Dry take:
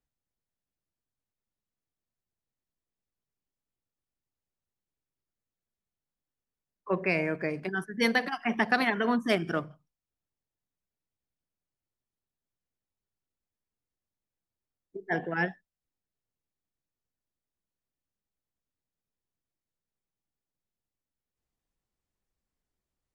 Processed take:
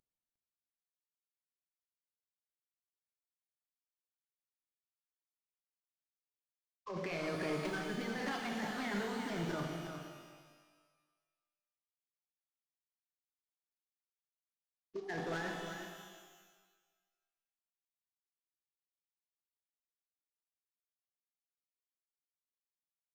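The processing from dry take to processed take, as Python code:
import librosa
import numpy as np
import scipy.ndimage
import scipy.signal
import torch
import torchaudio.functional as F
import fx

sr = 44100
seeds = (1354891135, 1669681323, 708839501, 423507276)

y = fx.cvsd(x, sr, bps=32000)
y = fx.over_compress(y, sr, threshold_db=-33.0, ratio=-1.0)
y = np.clip(10.0 ** (29.5 / 20.0) * y, -1.0, 1.0) / 10.0 ** (29.5 / 20.0)
y = y + 10.0 ** (-8.0 / 20.0) * np.pad(y, (int(356 * sr / 1000.0), 0))[:len(y)]
y = fx.rev_shimmer(y, sr, seeds[0], rt60_s=1.4, semitones=12, shimmer_db=-8, drr_db=2.5)
y = y * librosa.db_to_amplitude(-6.0)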